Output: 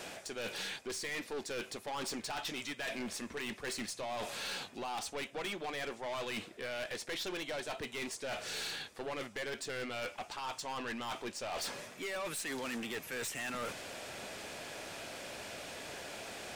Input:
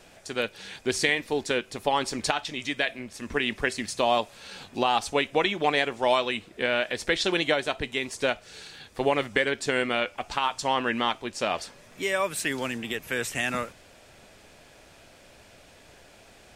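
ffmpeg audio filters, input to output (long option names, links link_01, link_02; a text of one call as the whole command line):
ffmpeg -i in.wav -af "highpass=frequency=240:poles=1,areverse,acompressor=threshold=-38dB:ratio=16,areverse,aeval=exprs='(tanh(178*val(0)+0.1)-tanh(0.1))/178':channel_layout=same,volume=9.5dB" out.wav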